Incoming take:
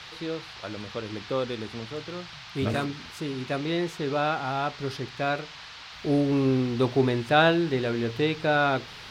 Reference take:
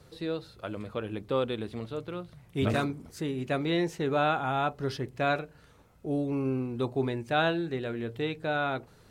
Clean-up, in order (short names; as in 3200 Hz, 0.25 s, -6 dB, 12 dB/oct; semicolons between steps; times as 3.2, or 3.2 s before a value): noise print and reduce 12 dB; gain 0 dB, from 5.92 s -6.5 dB